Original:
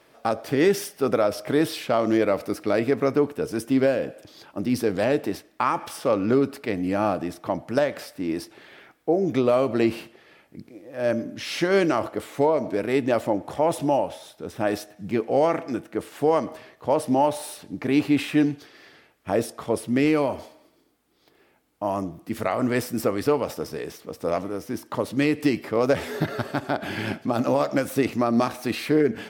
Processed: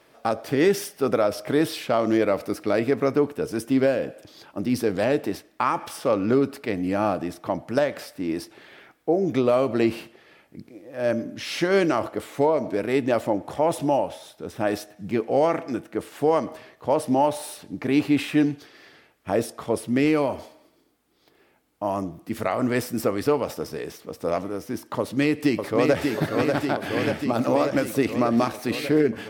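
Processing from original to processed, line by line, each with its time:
24.99–26.06 s: echo throw 590 ms, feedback 75%, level -4 dB

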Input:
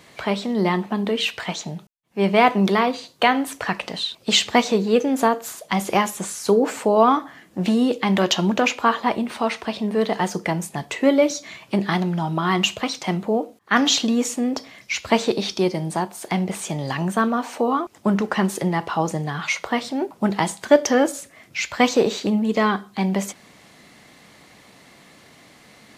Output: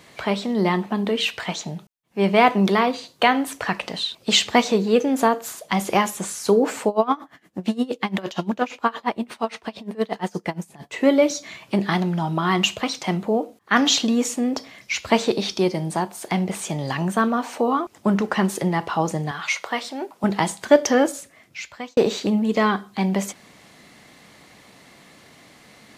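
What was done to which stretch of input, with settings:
6.88–10.94 s: logarithmic tremolo 8.6 Hz, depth 22 dB
19.31–20.24 s: high-pass 610 Hz 6 dB/octave
21.01–21.97 s: fade out

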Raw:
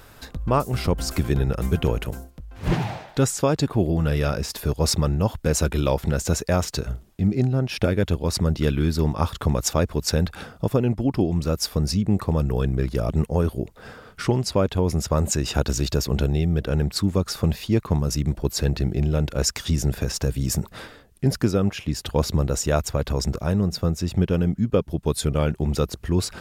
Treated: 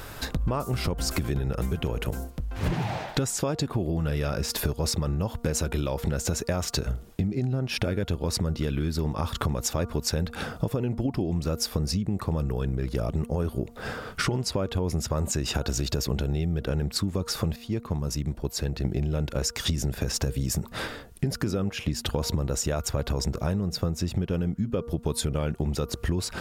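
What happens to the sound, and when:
17.56–18.85 s: gain -11.5 dB
whole clip: de-hum 235.2 Hz, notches 6; peak limiter -13.5 dBFS; compression 10:1, threshold -31 dBFS; trim +7.5 dB

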